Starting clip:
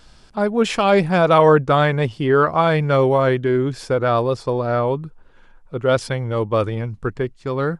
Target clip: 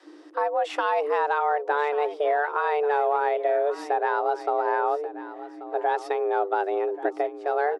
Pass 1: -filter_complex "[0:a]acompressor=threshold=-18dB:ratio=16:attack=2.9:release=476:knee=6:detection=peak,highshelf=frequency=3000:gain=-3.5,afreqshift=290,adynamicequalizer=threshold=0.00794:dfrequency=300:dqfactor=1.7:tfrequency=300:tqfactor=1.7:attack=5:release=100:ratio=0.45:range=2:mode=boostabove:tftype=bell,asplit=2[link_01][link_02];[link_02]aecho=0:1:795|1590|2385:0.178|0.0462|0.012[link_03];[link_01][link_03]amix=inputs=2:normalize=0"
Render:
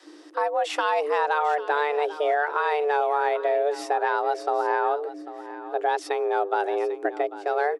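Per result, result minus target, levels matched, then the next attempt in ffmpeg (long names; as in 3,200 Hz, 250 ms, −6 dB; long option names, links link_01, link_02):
8,000 Hz band +8.0 dB; echo 340 ms early
-filter_complex "[0:a]acompressor=threshold=-18dB:ratio=16:attack=2.9:release=476:knee=6:detection=peak,highshelf=frequency=3000:gain=-13.5,afreqshift=290,adynamicequalizer=threshold=0.00794:dfrequency=300:dqfactor=1.7:tfrequency=300:tqfactor=1.7:attack=5:release=100:ratio=0.45:range=2:mode=boostabove:tftype=bell,asplit=2[link_01][link_02];[link_02]aecho=0:1:795|1590|2385:0.178|0.0462|0.012[link_03];[link_01][link_03]amix=inputs=2:normalize=0"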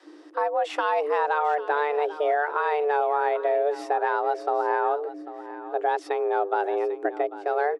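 echo 340 ms early
-filter_complex "[0:a]acompressor=threshold=-18dB:ratio=16:attack=2.9:release=476:knee=6:detection=peak,highshelf=frequency=3000:gain=-13.5,afreqshift=290,adynamicequalizer=threshold=0.00794:dfrequency=300:dqfactor=1.7:tfrequency=300:tqfactor=1.7:attack=5:release=100:ratio=0.45:range=2:mode=boostabove:tftype=bell,asplit=2[link_01][link_02];[link_02]aecho=0:1:1135|2270|3405:0.178|0.0462|0.012[link_03];[link_01][link_03]amix=inputs=2:normalize=0"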